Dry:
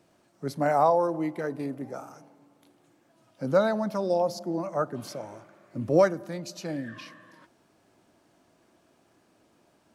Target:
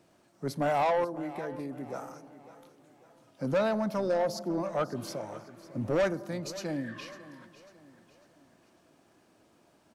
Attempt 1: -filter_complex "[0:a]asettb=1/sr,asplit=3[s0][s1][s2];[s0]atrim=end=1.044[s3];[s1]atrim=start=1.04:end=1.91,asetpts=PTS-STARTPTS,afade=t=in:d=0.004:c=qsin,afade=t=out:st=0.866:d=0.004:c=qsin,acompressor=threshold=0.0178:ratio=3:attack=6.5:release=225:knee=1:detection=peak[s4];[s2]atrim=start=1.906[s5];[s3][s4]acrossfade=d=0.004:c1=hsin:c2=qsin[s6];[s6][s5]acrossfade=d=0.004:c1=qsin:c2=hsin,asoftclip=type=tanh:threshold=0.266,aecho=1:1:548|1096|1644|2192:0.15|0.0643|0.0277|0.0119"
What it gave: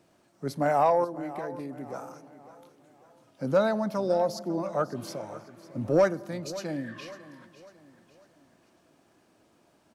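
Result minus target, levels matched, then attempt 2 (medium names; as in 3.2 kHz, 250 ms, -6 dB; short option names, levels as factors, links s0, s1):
saturation: distortion -12 dB
-filter_complex "[0:a]asettb=1/sr,asplit=3[s0][s1][s2];[s0]atrim=end=1.044[s3];[s1]atrim=start=1.04:end=1.91,asetpts=PTS-STARTPTS,afade=t=in:d=0.004:c=qsin,afade=t=out:st=0.866:d=0.004:c=qsin,acompressor=threshold=0.0178:ratio=3:attack=6.5:release=225:knee=1:detection=peak[s4];[s2]atrim=start=1.906[s5];[s3][s4]acrossfade=d=0.004:c1=hsin:c2=qsin[s6];[s6][s5]acrossfade=d=0.004:c1=qsin:c2=hsin,asoftclip=type=tanh:threshold=0.0794,aecho=1:1:548|1096|1644|2192:0.15|0.0643|0.0277|0.0119"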